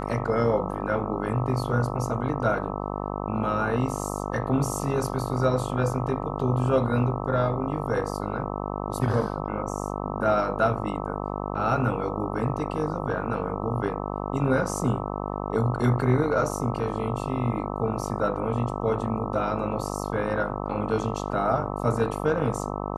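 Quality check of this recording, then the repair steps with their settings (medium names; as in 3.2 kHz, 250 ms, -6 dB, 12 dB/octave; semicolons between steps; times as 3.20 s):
buzz 50 Hz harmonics 26 -31 dBFS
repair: de-hum 50 Hz, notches 26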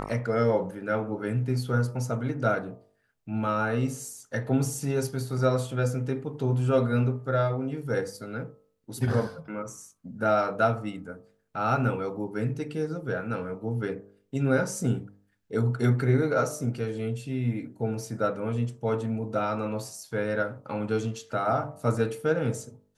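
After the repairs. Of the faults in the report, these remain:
nothing left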